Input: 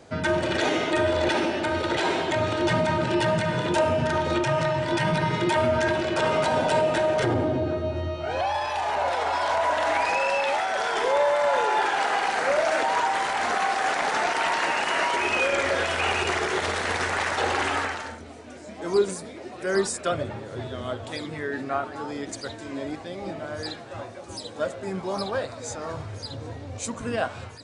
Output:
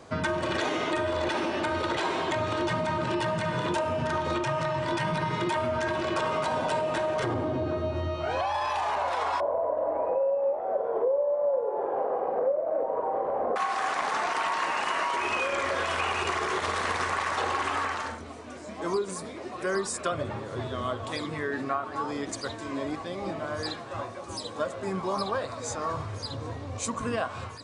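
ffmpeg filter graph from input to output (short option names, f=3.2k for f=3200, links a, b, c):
-filter_complex "[0:a]asettb=1/sr,asplit=3[a][b][c];[a]atrim=end=9.404[d];[b]atrim=start=9.4:end=13.56,asetpts=PTS-STARTPTS,afade=t=in:d=0.004:c=qsin,afade=t=out:st=4.156:d=0.004:c=qsin,lowpass=f=530:t=q:w=6.4,asplit=2[e][f];[f]adelay=42,volume=-13dB[g];[e][g]amix=inputs=2:normalize=0,atrim=end_sample=183456[h];[c]atrim=start=13.556[i];[d][h]acrossfade=d=0.004:c1=hsin:c2=qsin[j];[j][i]acrossfade=d=0.004:c1=qsin:c2=hsin,equalizer=f=1.1k:t=o:w=0.23:g=11.5,acompressor=threshold=-25dB:ratio=6"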